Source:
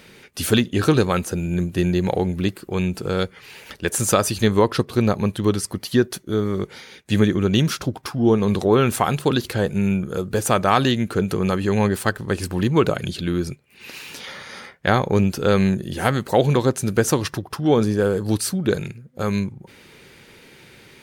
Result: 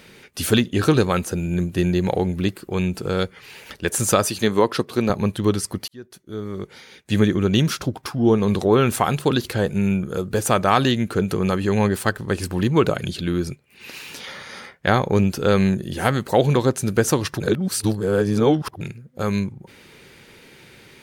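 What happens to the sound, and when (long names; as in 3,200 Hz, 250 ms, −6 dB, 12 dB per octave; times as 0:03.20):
0:04.25–0:05.10: Bessel high-pass filter 190 Hz
0:05.88–0:07.27: fade in
0:17.40–0:18.81: reverse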